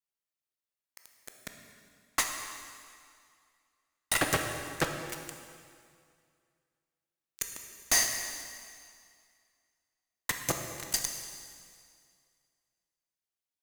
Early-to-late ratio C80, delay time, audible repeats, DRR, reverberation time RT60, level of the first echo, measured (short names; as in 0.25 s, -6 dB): 6.5 dB, none, none, 3.5 dB, 2.2 s, none